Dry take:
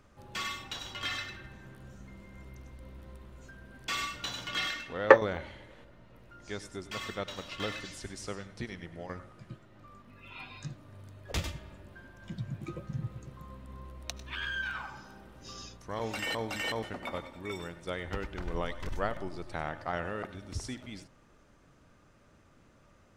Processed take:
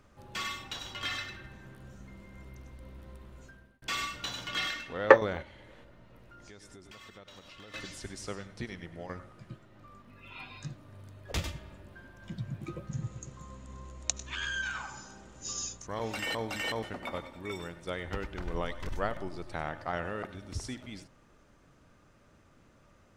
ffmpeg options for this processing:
-filter_complex "[0:a]asettb=1/sr,asplit=3[a][b][c];[a]atrim=end=5.424[d];[b]atrim=start=5.42:end=7.74,asetpts=PTS-STARTPTS,afade=t=in:d=0.004:c=qsin,afade=t=out:st=2.316:d=0.004:c=qsin,acompressor=threshold=-48dB:ratio=6:attack=3.2:release=140:knee=1:detection=peak[e];[c]atrim=start=7.736[f];[d][e]acrossfade=d=0.004:c1=hsin:c2=qsin[g];[g][f]acrossfade=d=0.004:c1=qsin:c2=hsin,asettb=1/sr,asplit=3[h][i][j];[h]atrim=end=12.914[k];[i]atrim=start=12.91:end=15.87,asetpts=PTS-STARTPTS,afade=t=in:d=0.004:c=qsin,afade=t=out:st=2.956:d=0.004:c=qsin,lowpass=f=6.9k:t=q:w=11[l];[j]atrim=start=15.866[m];[k][l]acrossfade=d=0.004:c1=hsin:c2=qsin[n];[n][m]acrossfade=d=0.004:c1=qsin:c2=hsin,asplit=2[o][p];[o]atrim=end=3.82,asetpts=PTS-STARTPTS,afade=t=out:st=3.4:d=0.42[q];[p]atrim=start=3.82,asetpts=PTS-STARTPTS,afade=t=in:d=0.004:c=hsin[r];[q][r]concat=n=2:v=0:a=1"

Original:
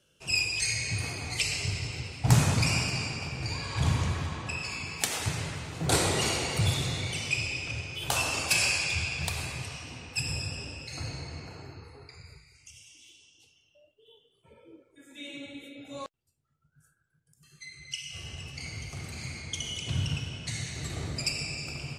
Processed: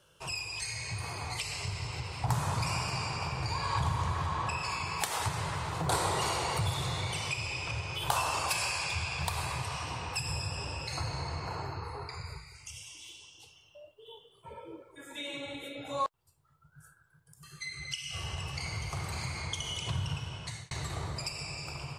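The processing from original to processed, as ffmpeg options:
-filter_complex "[0:a]asplit=2[a][b];[a]atrim=end=20.71,asetpts=PTS-STARTPTS,afade=t=out:st=20.13:d=0.58[c];[b]atrim=start=20.71,asetpts=PTS-STARTPTS,afade=t=in:d=0.004:c=hsin[d];[c][d]concat=n=2:v=0:a=1,acompressor=threshold=-43dB:ratio=2.5,equalizer=f=250:t=o:w=0.67:g=-10,equalizer=f=1k:t=o:w=0.67:g=11,equalizer=f=2.5k:t=o:w=0.67:g=-4,equalizer=f=6.3k:t=o:w=0.67:g=-4,dynaudnorm=f=590:g=7:m=3.5dB,volume=5dB"

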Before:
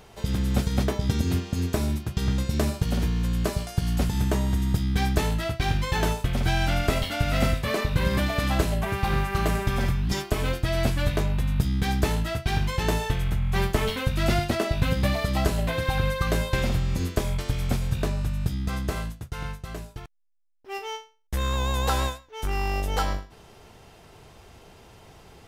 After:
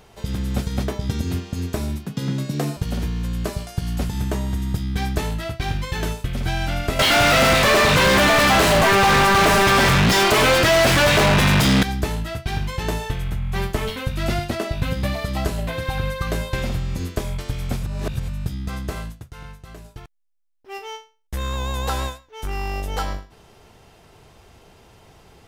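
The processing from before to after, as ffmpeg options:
-filter_complex "[0:a]asettb=1/sr,asplit=3[a][b][c];[a]atrim=end=2.064[d];[b]atrim=start=2.06:end=2.77,asetpts=PTS-STARTPTS,afade=t=in:d=0.004:c=qsin,afade=t=out:st=0.706:d=0.004:c=qsin,afreqshift=70[e];[c]atrim=start=2.766[f];[d][e]acrossfade=d=0.004:c1=hsin:c2=qsin[g];[g][f]acrossfade=d=0.004:c1=qsin:c2=hsin,asettb=1/sr,asplit=3[h][i][j];[h]atrim=end=5.854[k];[i]atrim=start=5.85:end=6.43,asetpts=PTS-STARTPTS,afade=t=in:d=0.004:c=qsin,afade=t=out:st=0.576:d=0.004:c=qsin,equalizer=f=820:w=1.5:g=-5.5[l];[j]atrim=start=6.426[m];[k][l]acrossfade=d=0.004:c1=hsin:c2=qsin[n];[n][m]acrossfade=d=0.004:c1=qsin:c2=hsin,asettb=1/sr,asplit=3[o][p][q];[o]atrim=end=6.994[r];[p]atrim=start=6.99:end=11.83,asetpts=PTS-STARTPTS,afade=t=in:d=0.004:c=qsin,afade=t=out:st=4.836:d=0.004:c=qsin,asplit=2[s][t];[t]highpass=f=720:p=1,volume=44dB,asoftclip=type=tanh:threshold=-8dB[u];[s][u]amix=inputs=2:normalize=0,lowpass=f=3.6k:p=1,volume=-6dB[v];[q]atrim=start=11.826[w];[r][v]acrossfade=d=0.004:c1=hsin:c2=qsin[x];[x][w]acrossfade=d=0.004:c1=qsin:c2=hsin,asettb=1/sr,asplit=3[y][z][aa];[y]atrim=end=19.224[ab];[z]atrim=start=19.22:end=19.85,asetpts=PTS-STARTPTS,afade=t=in:d=0.004:c=qsin,afade=t=out:st=0.626:d=0.004:c=qsin,acompressor=threshold=-43dB:ratio=1.5:attack=3.2:release=140:knee=1:detection=peak[ac];[aa]atrim=start=19.846[ad];[ab][ac]acrossfade=d=0.004:c1=hsin:c2=qsin[ae];[ae][ad]acrossfade=d=0.004:c1=qsin:c2=hsin,asplit=3[af][ag][ah];[af]atrim=end=17.832[ai];[ag]atrim=start=17.828:end=18.282,asetpts=PTS-STARTPTS,areverse[aj];[ah]atrim=start=18.278[ak];[ai][aj]acrossfade=d=0.004:c1=hsin:c2=hsin[al];[al][ak]acrossfade=d=0.004:c1=hsin:c2=hsin"

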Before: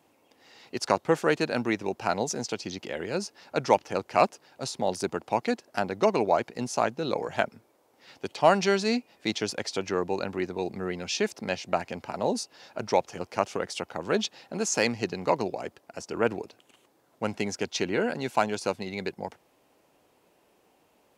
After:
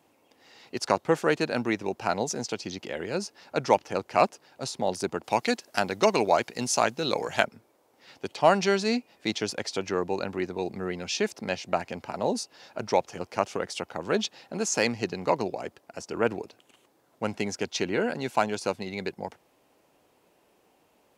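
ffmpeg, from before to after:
-filter_complex "[0:a]asplit=3[a][b][c];[a]afade=t=out:st=5.23:d=0.02[d];[b]highshelf=f=2k:g=10,afade=t=in:st=5.23:d=0.02,afade=t=out:st=7.44:d=0.02[e];[c]afade=t=in:st=7.44:d=0.02[f];[d][e][f]amix=inputs=3:normalize=0"

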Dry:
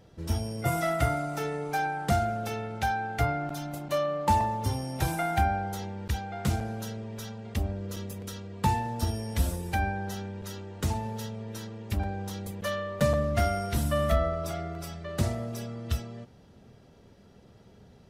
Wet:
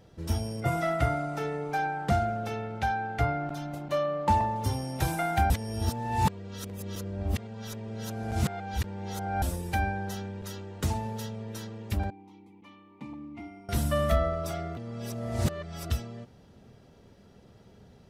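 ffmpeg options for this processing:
-filter_complex "[0:a]asettb=1/sr,asplit=3[a][b][c];[a]atrim=end=0.604[d];[b]atrim=start=0.6:end=4.56,asetpts=PTS-STARTPTS,afade=t=in:d=0.004:c=qsin,afade=t=out:st=3.956:d=0.004:c=qsin,lowpass=f=3.4k:p=1[e];[c]atrim=start=4.556[f];[d][e]acrossfade=d=0.004:c1=hsin:c2=qsin[g];[g][f]acrossfade=d=0.004:c1=qsin:c2=hsin,asettb=1/sr,asplit=3[h][i][j];[h]atrim=end=12.104[k];[i]atrim=start=12.1:end=13.69,asetpts=PTS-STARTPTS,afade=t=in:d=0.004:c=qsin,afade=t=out:st=1.586:d=0.004:c=qsin,asplit=3[l][m][n];[l]bandpass=f=300:t=q:w=8,volume=0dB[o];[m]bandpass=f=870:t=q:w=8,volume=-6dB[p];[n]bandpass=f=2.24k:t=q:w=8,volume=-9dB[q];[o][p][q]amix=inputs=3:normalize=0[r];[j]atrim=start=13.686[s];[k][r]acrossfade=d=0.004:c1=hsin:c2=qsin[t];[t][s]acrossfade=d=0.004:c1=qsin:c2=hsin,asplit=5[u][v][w][x][y];[u]atrim=end=5.502[z];[v]atrim=start=5.498:end=9.422,asetpts=PTS-STARTPTS,areverse[aa];[w]atrim=start=9.418:end=14.772[ab];[x]atrim=start=14.768:end=15.902,asetpts=PTS-STARTPTS,areverse[ac];[y]atrim=start=15.898[ad];[z][aa]acrossfade=d=0.004:c1=hsin:c2=hsin[ae];[ae][ab]acrossfade=d=0.004:c1=hsin:c2=hsin[af];[af][ac]acrossfade=d=0.004:c1=hsin:c2=hsin[ag];[ag][ad]acrossfade=d=0.004:c1=hsin:c2=hsin"

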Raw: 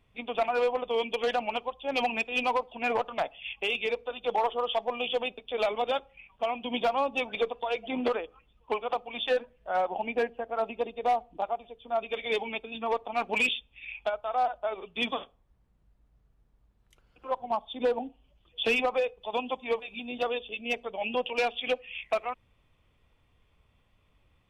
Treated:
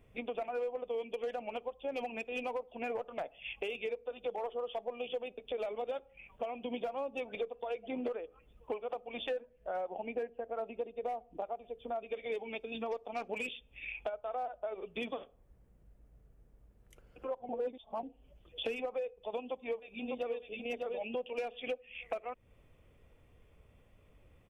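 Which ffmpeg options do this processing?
-filter_complex "[0:a]asettb=1/sr,asplit=3[a][b][c];[a]atrim=end=12.484[d];[b]atrim=start=12.48:end=13.28,asetpts=PTS-STARTPTS,afade=t=in:d=0.004:c=qsin,afade=t=out:st=0.796:d=0.004:c=qsin,equalizer=f=5.2k:w=1.5:g=14[e];[c]atrim=start=13.276[f];[d][e]acrossfade=d=0.004:c1=hsin:c2=qsin[g];[g][f]acrossfade=d=0.004:c1=qsin:c2=hsin,asplit=2[h][i];[i]afade=t=in:st=19.41:d=0.01,afade=t=out:st=20.41:d=0.01,aecho=0:1:600|1200|1800:0.595662|0.0893493|0.0134024[j];[h][j]amix=inputs=2:normalize=0,asplit=3[k][l][m];[k]atrim=end=17.492[n];[l]atrim=start=17.488:end=18.032,asetpts=PTS-STARTPTS,areverse[o];[m]atrim=start=18.028[p];[n][o]acrossfade=d=0.004:c1=hsin:c2=hsin[q];[q][p]acrossfade=d=0.004:c1=hsin:c2=hsin,equalizer=f=500:t=o:w=1:g=6,equalizer=f=1k:t=o:w=1:g=-6,equalizer=f=4k:t=o:w=1:g=-10,acompressor=threshold=-42dB:ratio=4,volume=4dB"

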